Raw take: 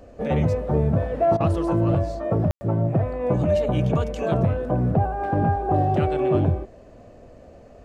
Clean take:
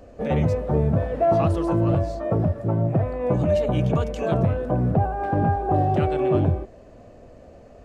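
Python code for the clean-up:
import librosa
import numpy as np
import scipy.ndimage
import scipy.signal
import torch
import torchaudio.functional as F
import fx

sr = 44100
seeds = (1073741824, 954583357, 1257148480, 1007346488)

y = fx.fix_ambience(x, sr, seeds[0], print_start_s=7.28, print_end_s=7.78, start_s=2.51, end_s=2.61)
y = fx.fix_interpolate(y, sr, at_s=(1.37,), length_ms=32.0)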